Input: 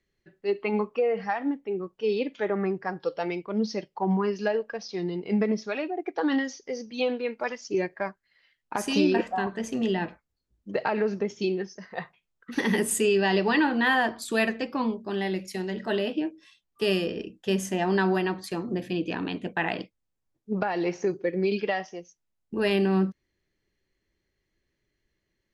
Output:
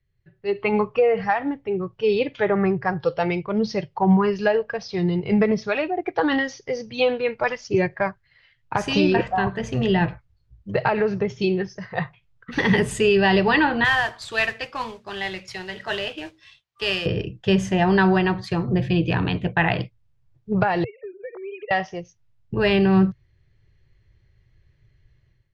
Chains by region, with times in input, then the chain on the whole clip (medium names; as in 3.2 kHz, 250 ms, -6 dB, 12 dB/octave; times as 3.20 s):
13.84–17.06 s: high-pass 1.4 kHz 6 dB/octave + modulation noise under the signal 14 dB
20.84–21.71 s: formants replaced by sine waves + high-pass 390 Hz + compression 3:1, threshold -42 dBFS
whole clip: low-pass 4.2 kHz 12 dB/octave; resonant low shelf 170 Hz +11.5 dB, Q 3; level rider gain up to 13.5 dB; trim -4.5 dB